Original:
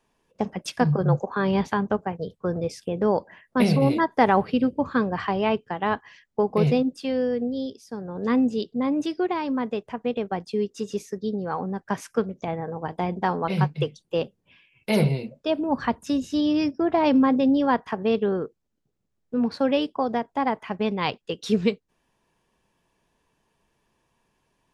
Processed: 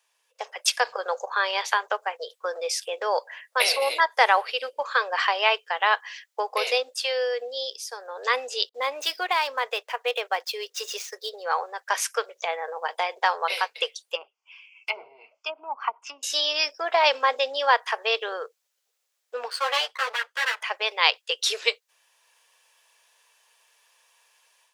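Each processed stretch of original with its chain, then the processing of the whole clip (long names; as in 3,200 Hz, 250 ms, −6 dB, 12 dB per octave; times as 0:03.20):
0:08.69–0:11.44: running median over 5 samples + downward expander −51 dBFS
0:14.15–0:16.23: treble cut that deepens with the level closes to 460 Hz, closed at −18.5 dBFS + high-shelf EQ 5,100 Hz −8 dB + phaser with its sweep stopped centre 2,600 Hz, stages 8
0:19.50–0:20.61: lower of the sound and its delayed copy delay 0.64 ms + bass and treble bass +1 dB, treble −5 dB + string-ensemble chorus
whole clip: automatic gain control gain up to 9 dB; elliptic high-pass filter 490 Hz, stop band 60 dB; tilt shelving filter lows −9.5 dB, about 1,300 Hz; level −1 dB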